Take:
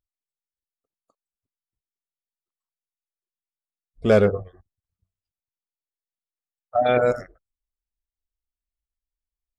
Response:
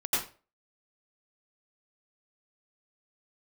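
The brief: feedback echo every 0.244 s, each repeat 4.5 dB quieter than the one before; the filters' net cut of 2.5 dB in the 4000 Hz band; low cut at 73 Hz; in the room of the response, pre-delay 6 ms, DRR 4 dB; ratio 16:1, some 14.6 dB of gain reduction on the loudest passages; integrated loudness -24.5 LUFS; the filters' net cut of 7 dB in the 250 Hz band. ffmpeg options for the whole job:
-filter_complex "[0:a]highpass=73,equalizer=f=250:t=o:g=-9,equalizer=f=4k:t=o:g=-3,acompressor=threshold=-27dB:ratio=16,aecho=1:1:244|488|732|976|1220|1464|1708|1952|2196:0.596|0.357|0.214|0.129|0.0772|0.0463|0.0278|0.0167|0.01,asplit=2[a][b];[1:a]atrim=start_sample=2205,adelay=6[c];[b][c]afir=irnorm=-1:irlink=0,volume=-13dB[d];[a][d]amix=inputs=2:normalize=0,volume=9.5dB"

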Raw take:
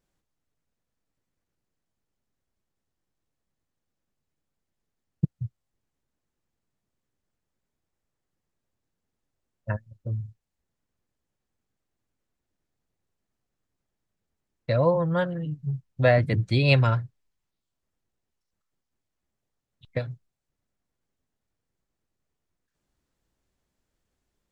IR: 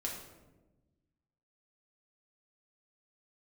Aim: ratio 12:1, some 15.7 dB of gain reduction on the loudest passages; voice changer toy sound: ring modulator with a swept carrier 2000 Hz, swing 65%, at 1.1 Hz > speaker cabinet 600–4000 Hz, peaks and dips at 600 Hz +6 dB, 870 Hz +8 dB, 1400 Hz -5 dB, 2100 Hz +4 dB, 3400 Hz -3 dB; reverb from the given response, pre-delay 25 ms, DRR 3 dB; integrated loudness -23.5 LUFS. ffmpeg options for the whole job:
-filter_complex "[0:a]acompressor=threshold=-30dB:ratio=12,asplit=2[a][b];[1:a]atrim=start_sample=2205,adelay=25[c];[b][c]afir=irnorm=-1:irlink=0,volume=-4dB[d];[a][d]amix=inputs=2:normalize=0,aeval=exprs='val(0)*sin(2*PI*2000*n/s+2000*0.65/1.1*sin(2*PI*1.1*n/s))':c=same,highpass=600,equalizer=f=600:t=q:w=4:g=6,equalizer=f=870:t=q:w=4:g=8,equalizer=f=1.4k:t=q:w=4:g=-5,equalizer=f=2.1k:t=q:w=4:g=4,equalizer=f=3.4k:t=q:w=4:g=-3,lowpass=f=4k:w=0.5412,lowpass=f=4k:w=1.3066,volume=11.5dB"

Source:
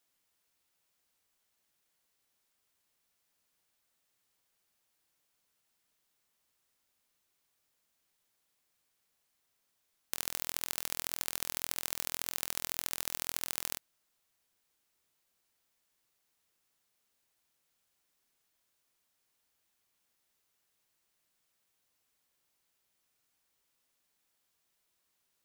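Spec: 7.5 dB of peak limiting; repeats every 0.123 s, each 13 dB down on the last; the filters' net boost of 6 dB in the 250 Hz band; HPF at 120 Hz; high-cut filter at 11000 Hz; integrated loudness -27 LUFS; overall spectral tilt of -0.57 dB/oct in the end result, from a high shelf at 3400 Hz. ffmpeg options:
-af "highpass=120,lowpass=11k,equalizer=f=250:t=o:g=8,highshelf=f=3.4k:g=4,alimiter=limit=-14.5dB:level=0:latency=1,aecho=1:1:123|246|369:0.224|0.0493|0.0108,volume=13.5dB"

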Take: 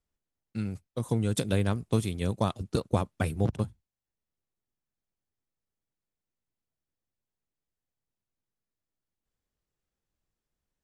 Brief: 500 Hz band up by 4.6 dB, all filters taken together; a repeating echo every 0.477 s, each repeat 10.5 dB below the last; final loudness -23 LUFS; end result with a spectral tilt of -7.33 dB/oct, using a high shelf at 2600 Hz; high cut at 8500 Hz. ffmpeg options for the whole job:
-af "lowpass=8.5k,equalizer=f=500:t=o:g=5.5,highshelf=f=2.6k:g=-3.5,aecho=1:1:477|954|1431:0.299|0.0896|0.0269,volume=6dB"

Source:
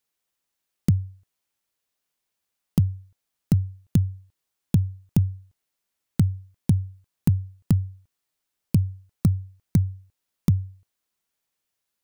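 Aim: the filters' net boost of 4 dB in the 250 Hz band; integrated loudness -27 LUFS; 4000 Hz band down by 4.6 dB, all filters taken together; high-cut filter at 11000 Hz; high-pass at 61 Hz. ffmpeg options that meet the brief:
-af "highpass=61,lowpass=11k,equalizer=f=250:t=o:g=6.5,equalizer=f=4k:t=o:g=-6,volume=-3dB"

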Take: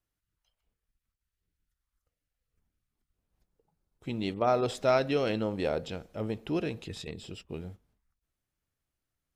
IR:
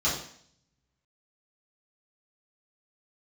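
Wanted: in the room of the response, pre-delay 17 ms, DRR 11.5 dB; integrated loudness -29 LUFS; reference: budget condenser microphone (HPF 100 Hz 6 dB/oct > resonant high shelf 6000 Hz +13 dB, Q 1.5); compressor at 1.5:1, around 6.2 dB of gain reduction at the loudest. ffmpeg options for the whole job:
-filter_complex "[0:a]acompressor=threshold=-38dB:ratio=1.5,asplit=2[a][b];[1:a]atrim=start_sample=2205,adelay=17[c];[b][c]afir=irnorm=-1:irlink=0,volume=-22.5dB[d];[a][d]amix=inputs=2:normalize=0,highpass=f=100:p=1,highshelf=f=6k:t=q:w=1.5:g=13,volume=7dB"

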